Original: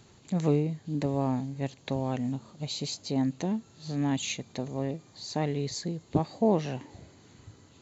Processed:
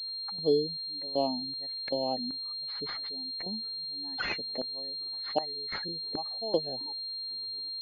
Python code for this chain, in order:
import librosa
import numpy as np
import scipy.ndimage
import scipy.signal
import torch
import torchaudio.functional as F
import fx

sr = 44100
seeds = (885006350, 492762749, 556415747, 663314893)

y = fx.spec_expand(x, sr, power=2.2)
y = fx.filter_lfo_highpass(y, sr, shape='square', hz=1.3, low_hz=610.0, high_hz=1500.0, q=1.2)
y = fx.pwm(y, sr, carrier_hz=4200.0)
y = y * 10.0 ** (8.0 / 20.0)